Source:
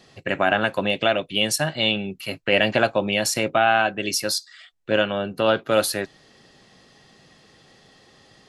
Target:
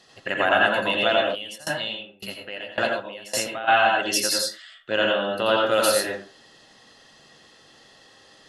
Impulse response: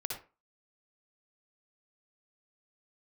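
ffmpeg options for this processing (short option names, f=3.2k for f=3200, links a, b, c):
-filter_complex "[0:a]lowshelf=f=450:g=-11,bandreject=f=2.3k:w=8.5[a];[1:a]atrim=start_sample=2205,afade=t=out:st=0.24:d=0.01,atrim=end_sample=11025,asetrate=29106,aresample=44100[b];[a][b]afir=irnorm=-1:irlink=0,asplit=3[c][d][e];[c]afade=t=out:st=1.34:d=0.02[f];[d]aeval=exprs='val(0)*pow(10,-24*if(lt(mod(1.8*n/s,1),2*abs(1.8)/1000),1-mod(1.8*n/s,1)/(2*abs(1.8)/1000),(mod(1.8*n/s,1)-2*abs(1.8)/1000)/(1-2*abs(1.8)/1000))/20)':c=same,afade=t=in:st=1.34:d=0.02,afade=t=out:st=3.67:d=0.02[g];[e]afade=t=in:st=3.67:d=0.02[h];[f][g][h]amix=inputs=3:normalize=0"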